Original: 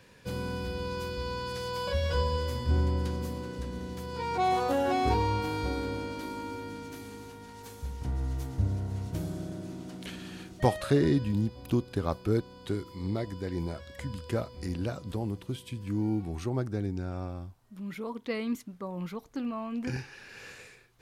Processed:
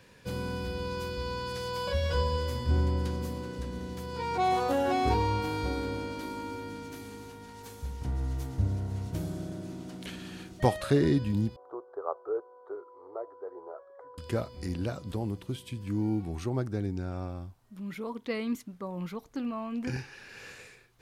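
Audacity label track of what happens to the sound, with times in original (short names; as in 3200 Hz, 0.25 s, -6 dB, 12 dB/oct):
11.560000	14.180000	elliptic band-pass 420–1300 Hz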